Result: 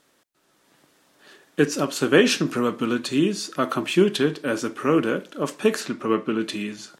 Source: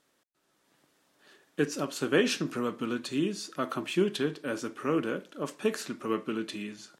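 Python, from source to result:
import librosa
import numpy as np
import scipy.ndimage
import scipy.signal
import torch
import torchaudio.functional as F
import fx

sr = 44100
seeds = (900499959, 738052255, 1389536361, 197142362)

y = fx.high_shelf(x, sr, hz=fx.line((5.79, 9000.0), (6.39, 4500.0)), db=-11.0, at=(5.79, 6.39), fade=0.02)
y = y * librosa.db_to_amplitude(8.5)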